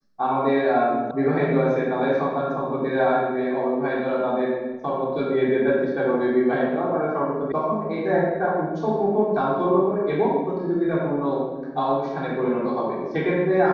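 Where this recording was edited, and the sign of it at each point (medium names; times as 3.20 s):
1.11 s: sound stops dead
7.52 s: sound stops dead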